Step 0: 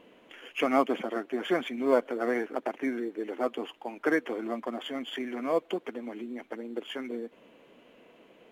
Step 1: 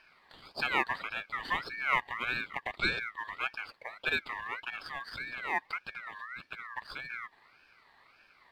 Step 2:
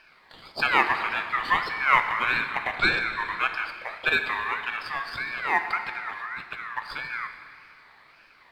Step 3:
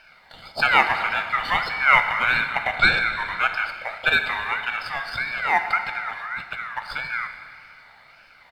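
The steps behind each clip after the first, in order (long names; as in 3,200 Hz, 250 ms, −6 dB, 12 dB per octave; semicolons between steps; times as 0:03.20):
gain on a spectral selection 0:02.79–0:02.99, 380–8,000 Hz +12 dB; ring modulator whose carrier an LFO sweeps 1,700 Hz, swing 20%, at 1.7 Hz; level −2.5 dB
dense smooth reverb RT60 2.5 s, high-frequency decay 0.9×, DRR 6 dB; dynamic equaliser 1,200 Hz, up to +5 dB, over −44 dBFS, Q 1.2; level +5.5 dB
comb filter 1.4 ms, depth 54%; level +3 dB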